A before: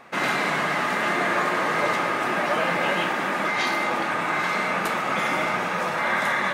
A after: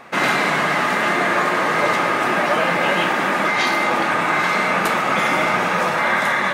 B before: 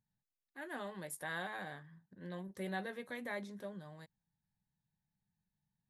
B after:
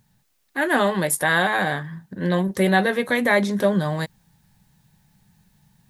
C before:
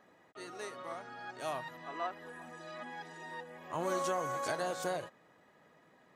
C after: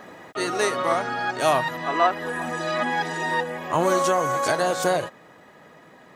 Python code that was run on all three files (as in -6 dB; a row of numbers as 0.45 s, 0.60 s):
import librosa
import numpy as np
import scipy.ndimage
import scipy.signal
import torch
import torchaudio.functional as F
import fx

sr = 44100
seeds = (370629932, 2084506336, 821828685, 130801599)

y = fx.rider(x, sr, range_db=4, speed_s=0.5)
y = librosa.util.normalize(y) * 10.0 ** (-6 / 20.0)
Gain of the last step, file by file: +5.5 dB, +24.0 dB, +17.0 dB